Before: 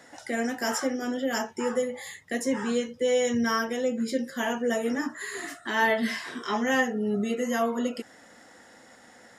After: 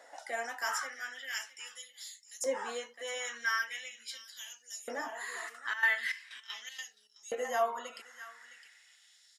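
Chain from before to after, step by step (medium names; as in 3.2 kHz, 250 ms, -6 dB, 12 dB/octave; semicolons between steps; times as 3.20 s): 5.48–7.21 s: trance gate ".xxx..x.xx" 157 bpm -12 dB; delay 661 ms -13.5 dB; LFO high-pass saw up 0.41 Hz 580–6300 Hz; trim -6.5 dB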